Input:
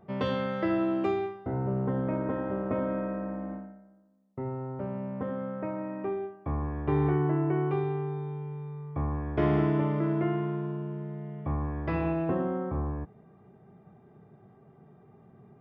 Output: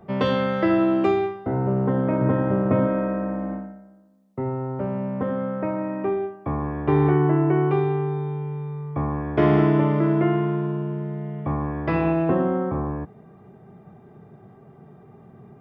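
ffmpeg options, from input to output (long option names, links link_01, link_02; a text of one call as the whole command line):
ffmpeg -i in.wav -filter_complex "[0:a]asettb=1/sr,asplit=3[link_01][link_02][link_03];[link_01]atrim=end=2.214[link_04];[link_02]atrim=start=2.21:end=2.87,asetpts=PTS-STARTPTS,afade=type=in:duration=0.004:curve=qsin,afade=type=out:start_time=0.656:duration=0.004:curve=qsin,equalizer=frequency=120:width_type=o:width=0.92:gain=12.5[link_05];[link_03]atrim=start=2.866[link_06];[link_04][link_05]acrossfade=duration=0.004:curve1=hsin:curve2=qsin[link_07];[link_07][link_06]acrossfade=duration=0.004:curve1=qsin:curve2=hsin,acrossover=split=100[link_08][link_09];[link_08]acompressor=threshold=-51dB:ratio=6[link_10];[link_10][link_09]amix=inputs=2:normalize=0,volume=8dB" out.wav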